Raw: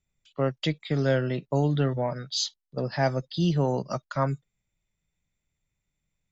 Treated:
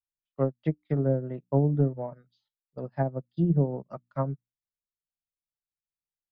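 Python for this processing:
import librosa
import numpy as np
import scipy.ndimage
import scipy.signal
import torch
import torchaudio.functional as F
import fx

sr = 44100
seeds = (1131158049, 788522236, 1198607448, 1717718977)

y = fx.env_lowpass_down(x, sr, base_hz=510.0, full_db=-20.0)
y = fx.lowpass(y, sr, hz=1200.0, slope=6)
y = fx.hum_notches(y, sr, base_hz=60, count=5)
y = fx.upward_expand(y, sr, threshold_db=-43.0, expansion=2.5)
y = y * librosa.db_to_amplitude(3.5)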